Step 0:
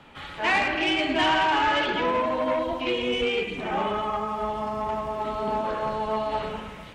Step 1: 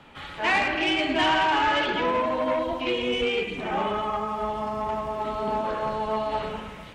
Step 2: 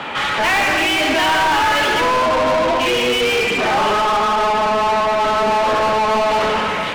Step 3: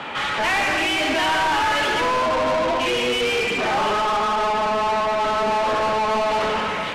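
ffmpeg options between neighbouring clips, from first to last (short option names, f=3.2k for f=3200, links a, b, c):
-af anull
-filter_complex "[0:a]asplit=2[a][b];[b]highpass=f=720:p=1,volume=32dB,asoftclip=type=tanh:threshold=-12dB[c];[a][c]amix=inputs=2:normalize=0,lowpass=f=2.9k:p=1,volume=-6dB,volume=2.5dB"
-af "lowpass=12k,volume=-4.5dB"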